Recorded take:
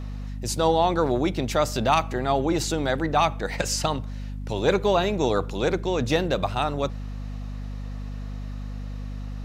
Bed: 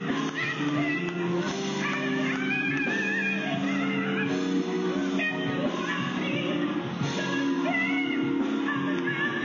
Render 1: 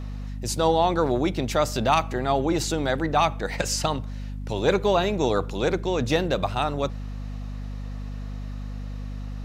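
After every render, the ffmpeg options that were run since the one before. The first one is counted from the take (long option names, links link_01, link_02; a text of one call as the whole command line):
ffmpeg -i in.wav -af anull out.wav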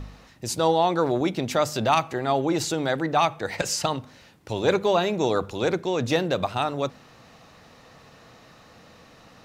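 ffmpeg -i in.wav -af "bandreject=frequency=50:width_type=h:width=4,bandreject=frequency=100:width_type=h:width=4,bandreject=frequency=150:width_type=h:width=4,bandreject=frequency=200:width_type=h:width=4,bandreject=frequency=250:width_type=h:width=4" out.wav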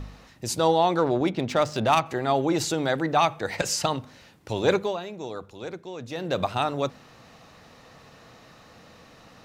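ffmpeg -i in.wav -filter_complex "[0:a]asettb=1/sr,asplit=3[link_01][link_02][link_03];[link_01]atrim=end=0.984[link_04];[link_02]atrim=start=0.98:end=2.06,asetpts=PTS-STARTPTS,afade=type=in:duration=0.004:curve=qsin,afade=type=out:start_time=1.076:duration=0.004:curve=qsin,adynamicsmooth=sensitivity=4:basefreq=3600[link_05];[link_03]atrim=start=2.056[link_06];[link_04][link_05]acrossfade=duration=0.004:curve1=hsin:curve2=qsin[link_07];[link_07][link_06]acrossfade=duration=0.004:curve1=qsin:curve2=hsin,asplit=3[link_08][link_09][link_10];[link_08]atrim=end=4.97,asetpts=PTS-STARTPTS,afade=type=out:start_time=4.73:duration=0.24:silence=0.251189[link_11];[link_09]atrim=start=4.97:end=6.15,asetpts=PTS-STARTPTS,volume=-12dB[link_12];[link_10]atrim=start=6.15,asetpts=PTS-STARTPTS,afade=type=in:duration=0.24:silence=0.251189[link_13];[link_11][link_12][link_13]concat=n=3:v=0:a=1" out.wav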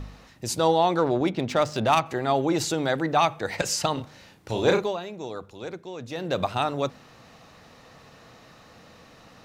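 ffmpeg -i in.wav -filter_complex "[0:a]asettb=1/sr,asplit=3[link_01][link_02][link_03];[link_01]atrim=end=3.934[link_04];[link_02]atrim=start=3.93:end=4.84,asetpts=PTS-STARTPTS,afade=type=in:duration=0.004:curve=qsin,afade=type=out:start_time=0.906:duration=0.004:curve=qsin,asplit=2[link_05][link_06];[link_06]adelay=34,volume=-4.5dB[link_07];[link_05][link_07]amix=inputs=2:normalize=0,atrim=end_sample=40131[link_08];[link_03]atrim=start=4.836[link_09];[link_04][link_08]acrossfade=duration=0.004:curve1=hsin:curve2=qsin[link_10];[link_10][link_09]acrossfade=duration=0.004:curve1=qsin:curve2=hsin" out.wav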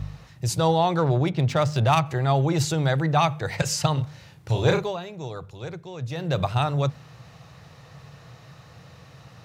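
ffmpeg -i in.wav -af "highpass=62,lowshelf=frequency=180:width_type=q:width=3:gain=7.5" out.wav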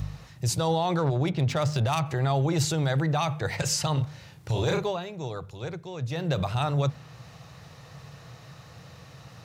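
ffmpeg -i in.wav -filter_complex "[0:a]acrossover=split=4300[link_01][link_02];[link_01]alimiter=limit=-18dB:level=0:latency=1:release=32[link_03];[link_02]acompressor=mode=upward:threshold=-56dB:ratio=2.5[link_04];[link_03][link_04]amix=inputs=2:normalize=0" out.wav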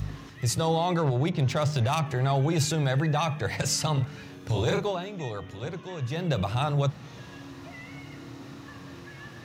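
ffmpeg -i in.wav -i bed.wav -filter_complex "[1:a]volume=-18.5dB[link_01];[0:a][link_01]amix=inputs=2:normalize=0" out.wav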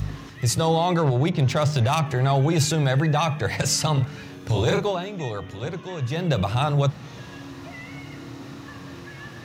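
ffmpeg -i in.wav -af "volume=4.5dB" out.wav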